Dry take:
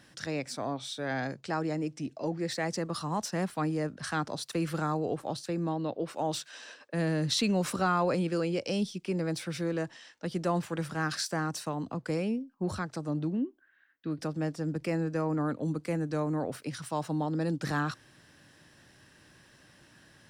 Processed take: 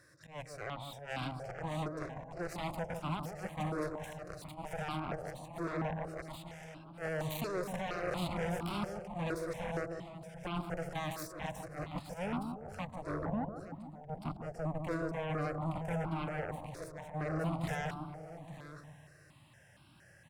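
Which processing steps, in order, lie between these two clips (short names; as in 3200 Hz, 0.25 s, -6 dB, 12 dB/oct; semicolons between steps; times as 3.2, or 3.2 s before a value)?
harmonic-percussive split percussive -12 dB; limiter -28 dBFS, peak gain reduction 11.5 dB; auto swell 0.135 s; echo 0.868 s -8 dB; added harmonics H 7 -10 dB, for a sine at -25 dBFS; analogue delay 0.149 s, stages 1024, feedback 53%, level -5 dB; step phaser 4.3 Hz 820–1800 Hz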